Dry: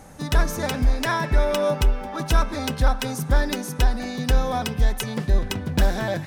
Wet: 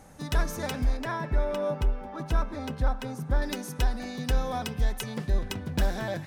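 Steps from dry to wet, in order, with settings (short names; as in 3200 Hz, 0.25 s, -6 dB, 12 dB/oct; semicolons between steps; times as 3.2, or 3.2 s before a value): 0.97–3.42 high shelf 2300 Hz -11 dB; gain -6.5 dB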